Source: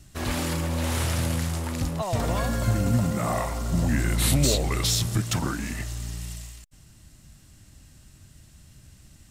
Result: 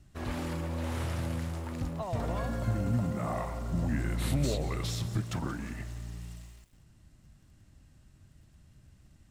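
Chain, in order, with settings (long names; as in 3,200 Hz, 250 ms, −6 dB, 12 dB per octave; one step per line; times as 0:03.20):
high-shelf EQ 3,100 Hz −11.5 dB
feedback echo at a low word length 179 ms, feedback 35%, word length 8 bits, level −14.5 dB
level −6.5 dB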